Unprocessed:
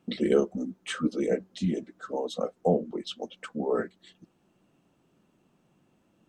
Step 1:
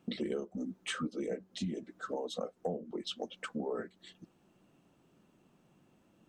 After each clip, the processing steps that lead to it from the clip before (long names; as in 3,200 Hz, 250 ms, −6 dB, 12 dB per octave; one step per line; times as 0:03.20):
downward compressor 6 to 1, threshold −34 dBFS, peak gain reduction 16 dB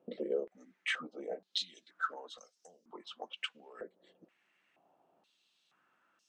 high-shelf EQ 2,600 Hz +8 dB
band-pass on a step sequencer 2.1 Hz 530–5,400 Hz
level +8 dB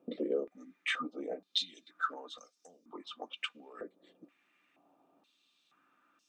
hollow resonant body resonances 280/1,200/2,400/3,600 Hz, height 12 dB, ringing for 60 ms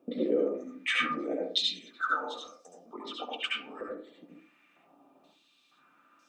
flanger 1.6 Hz, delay 2.6 ms, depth 4.2 ms, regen −53%
convolution reverb RT60 0.45 s, pre-delay 67 ms, DRR −2.5 dB
level +7 dB